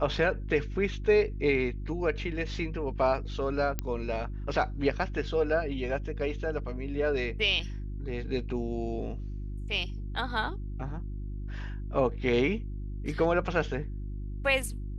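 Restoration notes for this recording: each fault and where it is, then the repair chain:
hum 50 Hz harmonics 7 -36 dBFS
3.79 pop -15 dBFS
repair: de-click; de-hum 50 Hz, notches 7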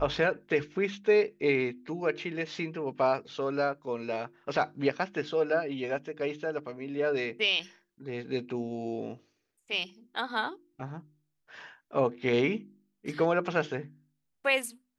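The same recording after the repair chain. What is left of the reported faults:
none

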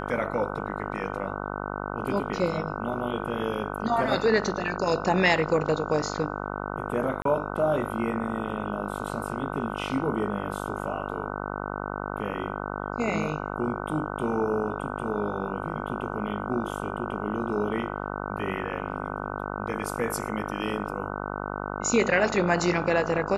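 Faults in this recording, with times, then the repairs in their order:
buzz 50 Hz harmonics 30 -33 dBFS
7.22–7.25 gap 33 ms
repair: de-hum 50 Hz, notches 30; interpolate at 7.22, 33 ms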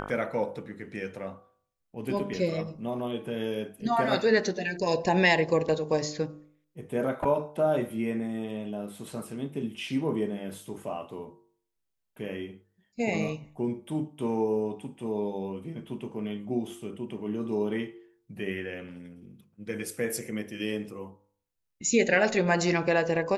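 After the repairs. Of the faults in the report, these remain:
none

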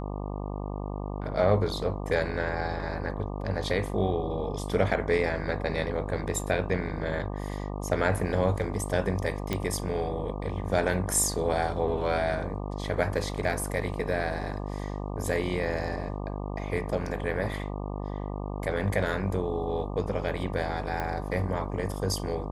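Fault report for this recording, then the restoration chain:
buzz 50 Hz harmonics 24 -34 dBFS
9.53 pop -13 dBFS
21 pop -18 dBFS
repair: de-click; de-hum 50 Hz, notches 24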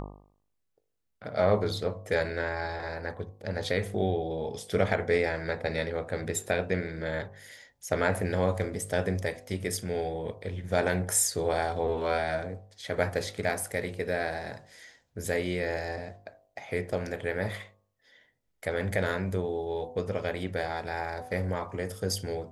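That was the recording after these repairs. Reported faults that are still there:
none

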